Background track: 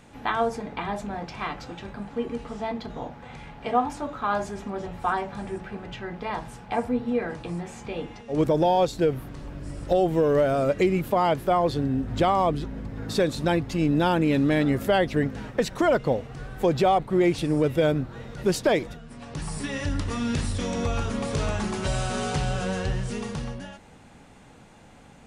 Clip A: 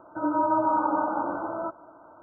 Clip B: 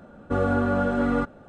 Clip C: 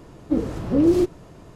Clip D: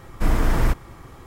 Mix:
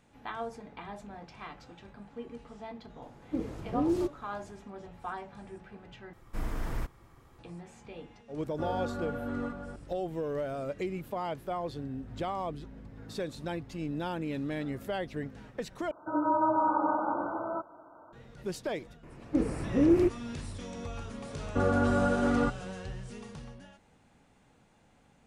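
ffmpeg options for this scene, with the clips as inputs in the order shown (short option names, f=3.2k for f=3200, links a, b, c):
-filter_complex "[3:a]asplit=2[a][b];[2:a]asplit=2[c][d];[0:a]volume=-13dB[e];[c]aecho=1:1:535:0.473[f];[b]highshelf=f=3k:t=q:w=3:g=-7.5[g];[e]asplit=3[h][i][j];[h]atrim=end=6.134[k];[4:a]atrim=end=1.26,asetpts=PTS-STARTPTS,volume=-15dB[l];[i]atrim=start=7.386:end=15.914[m];[1:a]atrim=end=2.22,asetpts=PTS-STARTPTS,volume=-3dB[n];[j]atrim=start=18.126[o];[a]atrim=end=1.55,asetpts=PTS-STARTPTS,volume=-11.5dB,afade=t=in:d=0.004:c=hsin,afade=t=out:st=1.546:d=0.004:c=hsin,adelay=3020[p];[f]atrim=end=1.48,asetpts=PTS-STARTPTS,volume=-13.5dB,afade=t=in:d=0.004:c=hsin,afade=t=out:st=1.476:d=0.004:c=hsin,adelay=8280[q];[g]atrim=end=1.55,asetpts=PTS-STARTPTS,volume=-6dB,afade=t=in:d=0.004:c=hsin,afade=t=out:st=1.546:d=0.004:c=hsin,adelay=19030[r];[d]atrim=end=1.48,asetpts=PTS-STARTPTS,volume=-3.5dB,afade=t=in:d=0.004:c=hsin,afade=t=out:st=1.476:d=0.004:c=hsin,adelay=21250[s];[k][l]acrossfade=d=0.004:c1=hsin:c2=hsin[t];[t][m]acrossfade=d=0.004:c1=hsin:c2=hsin[u];[u][n]acrossfade=d=0.004:c1=hsin:c2=hsin[v];[v][o]acrossfade=d=0.004:c1=hsin:c2=hsin[w];[w][p][q][r][s]amix=inputs=5:normalize=0"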